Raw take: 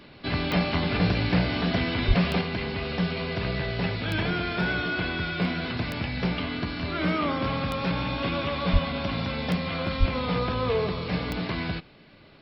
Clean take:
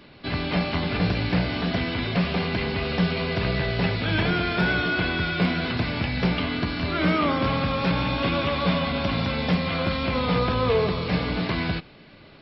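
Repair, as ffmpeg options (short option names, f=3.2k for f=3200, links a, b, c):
-filter_complex "[0:a]adeclick=t=4,asplit=3[a][b][c];[a]afade=t=out:st=2.07:d=0.02[d];[b]highpass=f=140:w=0.5412,highpass=f=140:w=1.3066,afade=t=in:st=2.07:d=0.02,afade=t=out:st=2.19:d=0.02[e];[c]afade=t=in:st=2.19:d=0.02[f];[d][e][f]amix=inputs=3:normalize=0,asplit=3[g][h][i];[g]afade=t=out:st=8.72:d=0.02[j];[h]highpass=f=140:w=0.5412,highpass=f=140:w=1.3066,afade=t=in:st=8.72:d=0.02,afade=t=out:st=8.84:d=0.02[k];[i]afade=t=in:st=8.84:d=0.02[l];[j][k][l]amix=inputs=3:normalize=0,asplit=3[m][n][o];[m]afade=t=out:st=9.99:d=0.02[p];[n]highpass=f=140:w=0.5412,highpass=f=140:w=1.3066,afade=t=in:st=9.99:d=0.02,afade=t=out:st=10.11:d=0.02[q];[o]afade=t=in:st=10.11:d=0.02[r];[p][q][r]amix=inputs=3:normalize=0,asetnsamples=n=441:p=0,asendcmd='2.41 volume volume 4dB',volume=0dB"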